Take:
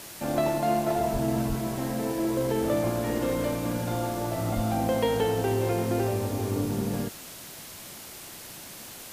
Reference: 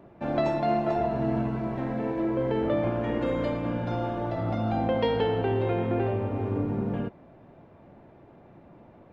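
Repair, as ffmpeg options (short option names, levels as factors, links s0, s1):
-filter_complex "[0:a]asplit=3[s0][s1][s2];[s0]afade=t=out:st=1.12:d=0.02[s3];[s1]highpass=f=140:w=0.5412,highpass=f=140:w=1.3066,afade=t=in:st=1.12:d=0.02,afade=t=out:st=1.24:d=0.02[s4];[s2]afade=t=in:st=1.24:d=0.02[s5];[s3][s4][s5]amix=inputs=3:normalize=0,asplit=3[s6][s7][s8];[s6]afade=t=out:st=1.48:d=0.02[s9];[s7]highpass=f=140:w=0.5412,highpass=f=140:w=1.3066,afade=t=in:st=1.48:d=0.02,afade=t=out:st=1.6:d=0.02[s10];[s8]afade=t=in:st=1.6:d=0.02[s11];[s9][s10][s11]amix=inputs=3:normalize=0,asplit=3[s12][s13][s14];[s12]afade=t=out:st=4.55:d=0.02[s15];[s13]highpass=f=140:w=0.5412,highpass=f=140:w=1.3066,afade=t=in:st=4.55:d=0.02,afade=t=out:st=4.67:d=0.02[s16];[s14]afade=t=in:st=4.67:d=0.02[s17];[s15][s16][s17]amix=inputs=3:normalize=0,afwtdn=0.0079"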